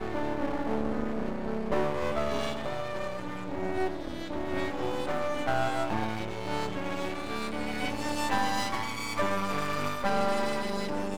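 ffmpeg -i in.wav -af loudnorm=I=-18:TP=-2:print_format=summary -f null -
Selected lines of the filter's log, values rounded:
Input Integrated:    -31.4 LUFS
Input True Peak:     -13.1 dBTP
Input LRA:             2.3 LU
Input Threshold:     -41.4 LUFS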